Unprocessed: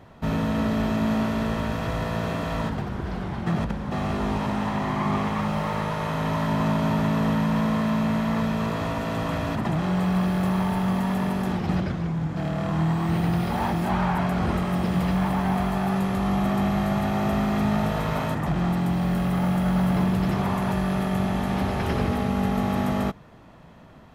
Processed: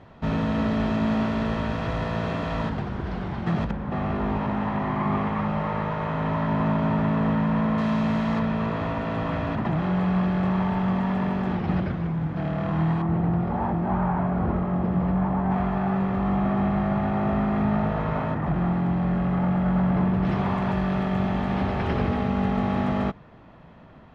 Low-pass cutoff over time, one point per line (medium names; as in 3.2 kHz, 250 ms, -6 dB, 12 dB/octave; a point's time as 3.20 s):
4.5 kHz
from 3.71 s 2.3 kHz
from 7.78 s 5 kHz
from 8.39 s 2.8 kHz
from 13.02 s 1.2 kHz
from 15.51 s 1.9 kHz
from 20.25 s 3.3 kHz